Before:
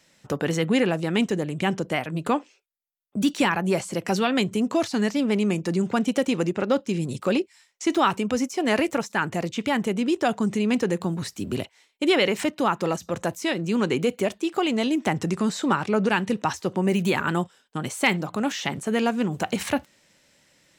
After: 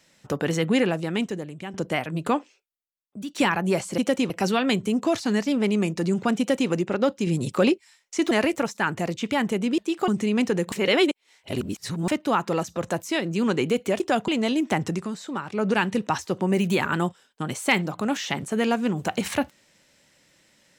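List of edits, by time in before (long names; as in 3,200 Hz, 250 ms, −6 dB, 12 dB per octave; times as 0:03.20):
0:00.81–0:01.74: fade out, to −14.5 dB
0:02.32–0:03.35: fade out linear, to −15.5 dB
0:06.07–0:06.39: duplicate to 0:03.98
0:06.95–0:07.41: clip gain +3 dB
0:07.99–0:08.66: remove
0:10.13–0:10.41: swap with 0:14.33–0:14.63
0:11.05–0:12.41: reverse
0:15.21–0:16.07: duck −8.5 dB, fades 0.25 s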